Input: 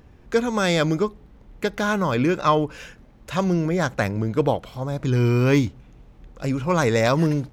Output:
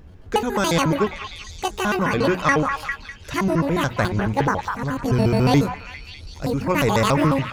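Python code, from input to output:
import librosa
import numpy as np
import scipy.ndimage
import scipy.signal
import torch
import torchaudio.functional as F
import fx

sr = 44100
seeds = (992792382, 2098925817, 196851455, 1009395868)

y = fx.pitch_trill(x, sr, semitones=10.5, every_ms=71)
y = fx.low_shelf(y, sr, hz=120.0, db=10.0)
y = fx.hum_notches(y, sr, base_hz=60, count=4)
y = fx.echo_stepped(y, sr, ms=200, hz=1200.0, octaves=0.7, feedback_pct=70, wet_db=-3.0)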